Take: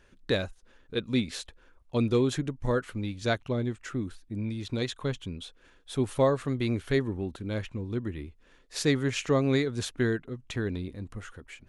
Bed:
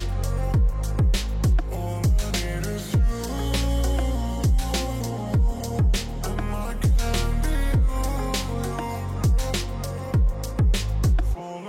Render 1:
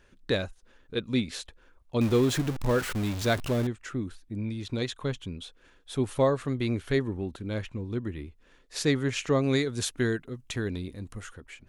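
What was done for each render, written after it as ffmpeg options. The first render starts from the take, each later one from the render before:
-filter_complex "[0:a]asettb=1/sr,asplit=3[a][b][c];[a]atrim=end=2.014[d];[b]atrim=start=2.01:end=3.67,asetpts=PTS-STARTPTS,afade=t=in:d=0.004:c=qsin,afade=t=out:st=1.656:d=0.004:c=qsin,aeval=exprs='val(0)+0.5*0.0316*sgn(val(0))':c=same[e];[c]atrim=start=3.666[f];[d][e]acrossfade=d=0.004:c1=hsin:c2=qsin[g];[g][f]acrossfade=d=0.004:c1=qsin:c2=hsin,asettb=1/sr,asplit=3[h][i][j];[h]atrim=end=9.434[k];[i]atrim=start=9.43:end=11.34,asetpts=PTS-STARTPTS,afade=t=in:d=0.004:c=qsin,afade=t=out:st=1.906:d=0.004:c=qsin,aemphasis=mode=production:type=cd[l];[j]atrim=start=11.336[m];[k][l]acrossfade=d=0.004:c1=hsin:c2=qsin[n];[n][m]acrossfade=d=0.004:c1=qsin:c2=hsin"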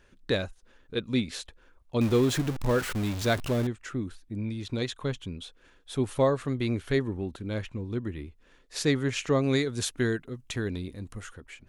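-af anull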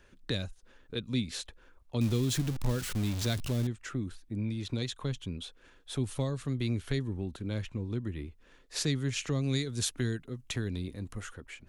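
-filter_complex "[0:a]acrossover=split=220|3000[a][b][c];[b]acompressor=threshold=-39dB:ratio=4[d];[a][d][c]amix=inputs=3:normalize=0"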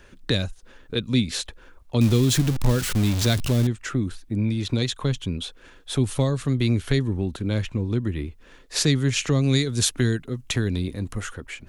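-af "volume=10dB"

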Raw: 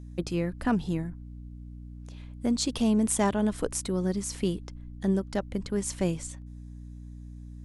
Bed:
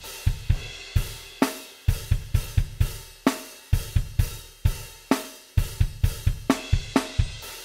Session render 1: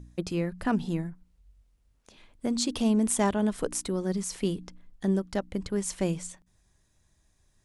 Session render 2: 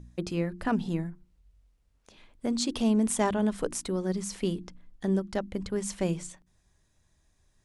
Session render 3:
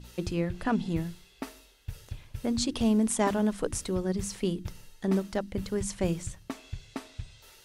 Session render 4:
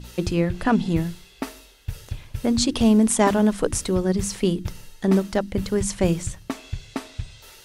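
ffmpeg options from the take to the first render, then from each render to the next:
-af "bandreject=f=60:t=h:w=4,bandreject=f=120:t=h:w=4,bandreject=f=180:t=h:w=4,bandreject=f=240:t=h:w=4,bandreject=f=300:t=h:w=4"
-af "highshelf=f=8.4k:g=-5.5,bandreject=f=50:t=h:w=6,bandreject=f=100:t=h:w=6,bandreject=f=150:t=h:w=6,bandreject=f=200:t=h:w=6,bandreject=f=250:t=h:w=6,bandreject=f=300:t=h:w=6,bandreject=f=350:t=h:w=6"
-filter_complex "[1:a]volume=-16.5dB[a];[0:a][a]amix=inputs=2:normalize=0"
-af "volume=8dB"

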